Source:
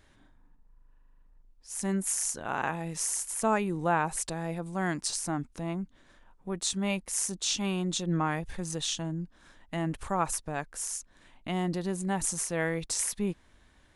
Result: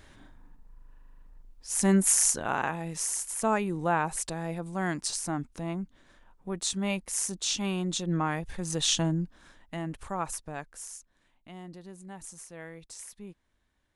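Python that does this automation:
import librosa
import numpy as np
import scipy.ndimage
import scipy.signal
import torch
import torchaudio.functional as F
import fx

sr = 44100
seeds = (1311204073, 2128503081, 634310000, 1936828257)

y = fx.gain(x, sr, db=fx.line((2.29, 7.5), (2.69, 0.0), (8.57, 0.0), (8.99, 8.0), (9.84, -4.0), (10.55, -4.0), (11.49, -14.0)))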